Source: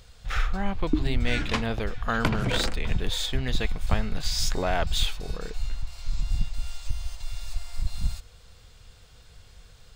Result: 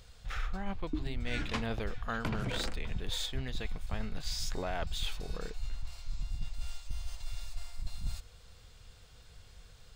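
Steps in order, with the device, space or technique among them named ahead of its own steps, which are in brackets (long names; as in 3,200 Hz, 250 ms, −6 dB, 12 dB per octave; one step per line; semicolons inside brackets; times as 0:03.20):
compression on the reversed sound (reversed playback; downward compressor, threshold −26 dBFS, peak gain reduction 10.5 dB; reversed playback)
level −4 dB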